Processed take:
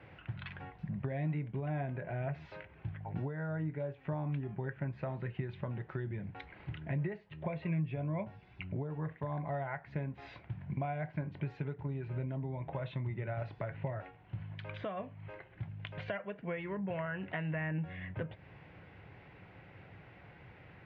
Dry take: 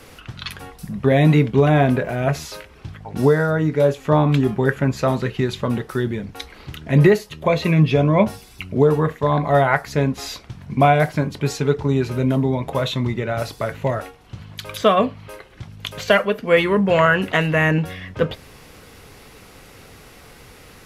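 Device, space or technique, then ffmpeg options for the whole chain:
bass amplifier: -af "acompressor=threshold=-26dB:ratio=6,highpass=78,equalizer=frequency=110:width_type=q:width=4:gain=6,equalizer=frequency=170:width_type=q:width=4:gain=4,equalizer=frequency=240:width_type=q:width=4:gain=-9,equalizer=frequency=450:width_type=q:width=4:gain=-8,equalizer=frequency=1200:width_type=q:width=4:gain=-9,lowpass=frequency=2400:width=0.5412,lowpass=frequency=2400:width=1.3066,volume=-8dB"

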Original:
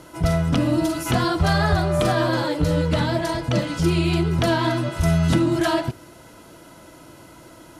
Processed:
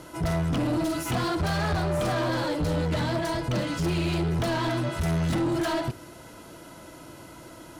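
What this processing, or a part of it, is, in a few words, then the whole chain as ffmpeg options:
saturation between pre-emphasis and de-emphasis: -af "highshelf=frequency=2600:gain=11,asoftclip=type=tanh:threshold=-22dB,highshelf=frequency=2600:gain=-11"

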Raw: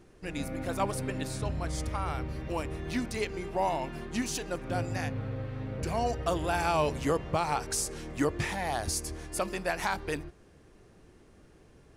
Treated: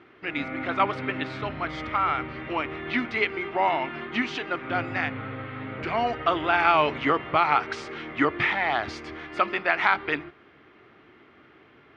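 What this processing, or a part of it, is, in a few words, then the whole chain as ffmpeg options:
kitchen radio: -af "highpass=180,equalizer=frequency=180:width_type=q:width=4:gain=-10,equalizer=frequency=510:width_type=q:width=4:gain=-7,equalizer=frequency=1300:width_type=q:width=4:gain=9,equalizer=frequency=2100:width_type=q:width=4:gain=9,equalizer=frequency=3200:width_type=q:width=4:gain=5,lowpass=frequency=3500:width=0.5412,lowpass=frequency=3500:width=1.3066,volume=6dB"

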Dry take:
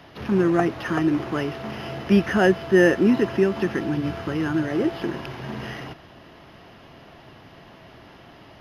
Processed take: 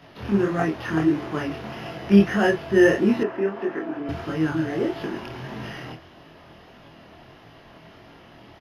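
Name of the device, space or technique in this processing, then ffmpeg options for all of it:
double-tracked vocal: -filter_complex "[0:a]asplit=2[link_01][link_02];[link_02]adelay=25,volume=-3dB[link_03];[link_01][link_03]amix=inputs=2:normalize=0,flanger=delay=18:depth=7.4:speed=1.6,asettb=1/sr,asplit=3[link_04][link_05][link_06];[link_04]atrim=end=3.234[link_07];[link_05]atrim=start=3.23:end=4.09,asetpts=PTS-STARTPTS,afade=type=in:duration=0.004:curve=qsin,afade=type=out:start_time=0.856:duration=0.004:curve=qsin,acrossover=split=250 2200:gain=0.0794 1 0.141[link_08][link_09][link_10];[link_08][link_09][link_10]amix=inputs=3:normalize=0[link_11];[link_06]atrim=start=4.086[link_12];[link_07][link_11]acrossfade=duration=0.004:curve1=hsin:curve2=qsin[link_13];[link_13][link_12]acrossfade=duration=0.004:curve1=qsin:curve2=hsin"

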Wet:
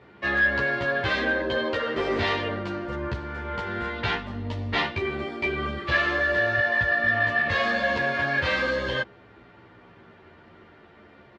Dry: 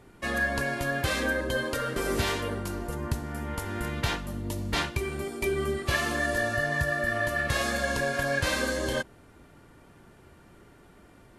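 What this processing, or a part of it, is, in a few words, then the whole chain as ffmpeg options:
barber-pole flanger into a guitar amplifier: -filter_complex "[0:a]asplit=2[link_01][link_02];[link_02]adelay=11.5,afreqshift=-0.35[link_03];[link_01][link_03]amix=inputs=2:normalize=1,asoftclip=type=tanh:threshold=-23dB,highpass=98,equalizer=frequency=150:width_type=q:width=4:gain=-7,equalizer=frequency=270:width_type=q:width=4:gain=-6,equalizer=frequency=1900:width_type=q:width=4:gain=3,lowpass=frequency=4000:width=0.5412,lowpass=frequency=4000:width=1.3066,volume=8dB"

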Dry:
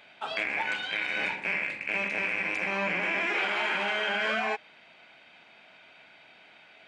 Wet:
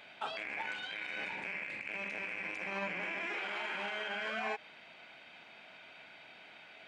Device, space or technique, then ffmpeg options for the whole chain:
de-esser from a sidechain: -filter_complex "[0:a]asplit=2[link_01][link_02];[link_02]highpass=4400,apad=whole_len=302972[link_03];[link_01][link_03]sidechaincompress=threshold=-48dB:ratio=5:attack=1.1:release=96"

